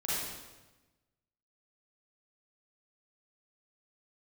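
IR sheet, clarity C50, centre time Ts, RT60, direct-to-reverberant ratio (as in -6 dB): -4.0 dB, 103 ms, 1.1 s, -9.5 dB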